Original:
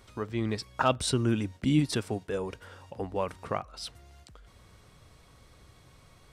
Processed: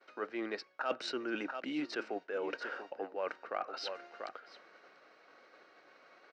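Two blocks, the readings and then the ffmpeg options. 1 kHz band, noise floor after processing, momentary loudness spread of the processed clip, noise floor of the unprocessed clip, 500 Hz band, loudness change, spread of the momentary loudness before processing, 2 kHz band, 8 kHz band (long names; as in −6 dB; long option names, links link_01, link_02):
−6.5 dB, −64 dBFS, 9 LU, −58 dBFS, −5.5 dB, −9.0 dB, 14 LU, −1.0 dB, −18.0 dB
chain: -filter_complex "[0:a]adynamicsmooth=sensitivity=1.5:basefreq=3500,highpass=frequency=360:width=0.5412,highpass=frequency=360:width=1.3066,equalizer=frequency=420:width_type=q:width=4:gain=-4,equalizer=frequency=1000:width_type=q:width=4:gain=-7,equalizer=frequency=1500:width_type=q:width=4:gain=6,lowpass=frequency=6000:width=0.5412,lowpass=frequency=6000:width=1.3066,asplit=2[link_01][link_02];[link_02]aecho=0:1:689:0.119[link_03];[link_01][link_03]amix=inputs=2:normalize=0,agate=range=-33dB:threshold=-58dB:ratio=3:detection=peak,bandreject=frequency=3400:width=6.5,areverse,acompressor=threshold=-46dB:ratio=4,areverse,volume=9.5dB"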